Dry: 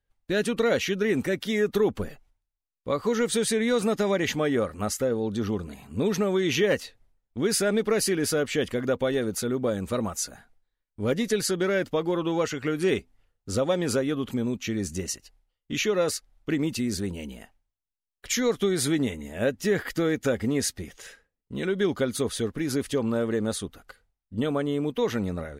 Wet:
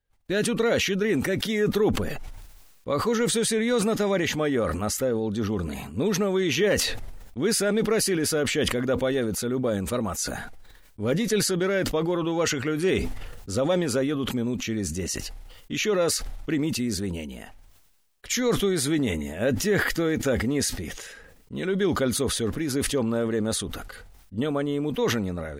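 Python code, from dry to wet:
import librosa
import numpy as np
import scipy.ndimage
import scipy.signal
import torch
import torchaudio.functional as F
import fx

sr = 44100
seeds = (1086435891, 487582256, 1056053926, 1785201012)

y = fx.sustainer(x, sr, db_per_s=39.0)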